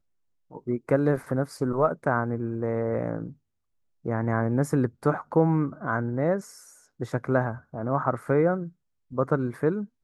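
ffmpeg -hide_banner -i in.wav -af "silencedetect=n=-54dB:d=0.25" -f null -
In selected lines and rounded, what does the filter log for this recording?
silence_start: 0.00
silence_end: 0.51 | silence_duration: 0.51
silence_start: 3.36
silence_end: 4.04 | silence_duration: 0.69
silence_start: 8.72
silence_end: 9.11 | silence_duration: 0.38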